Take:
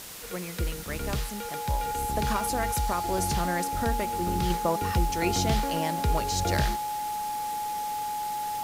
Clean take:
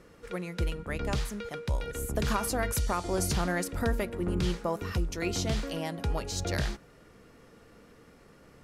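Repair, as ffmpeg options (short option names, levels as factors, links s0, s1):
-af "bandreject=f=840:w=30,afwtdn=0.0089,asetnsamples=n=441:p=0,asendcmd='4.5 volume volume -4dB',volume=1"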